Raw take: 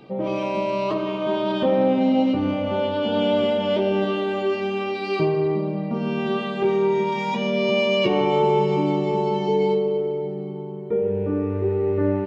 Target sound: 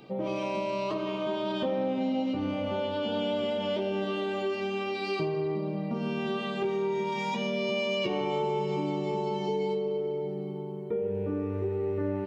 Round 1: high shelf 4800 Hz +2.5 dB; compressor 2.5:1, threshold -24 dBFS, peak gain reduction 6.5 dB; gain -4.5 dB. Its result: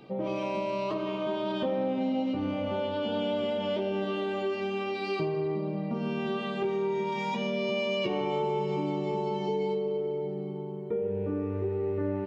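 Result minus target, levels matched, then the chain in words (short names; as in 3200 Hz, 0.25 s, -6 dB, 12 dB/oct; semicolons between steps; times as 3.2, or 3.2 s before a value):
8000 Hz band -4.0 dB
high shelf 4800 Hz +9 dB; compressor 2.5:1, threshold -24 dBFS, peak gain reduction 6.5 dB; gain -4.5 dB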